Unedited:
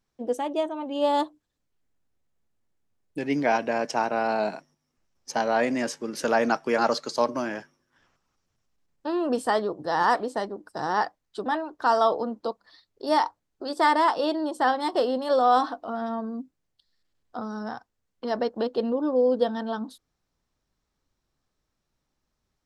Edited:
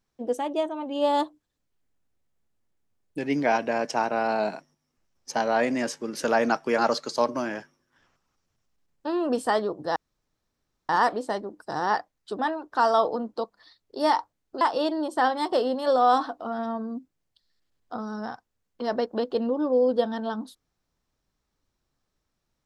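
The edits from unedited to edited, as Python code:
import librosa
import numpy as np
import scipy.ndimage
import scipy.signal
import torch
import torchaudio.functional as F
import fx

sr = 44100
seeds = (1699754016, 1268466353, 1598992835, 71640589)

y = fx.edit(x, sr, fx.insert_room_tone(at_s=9.96, length_s=0.93),
    fx.cut(start_s=13.68, length_s=0.36), tone=tone)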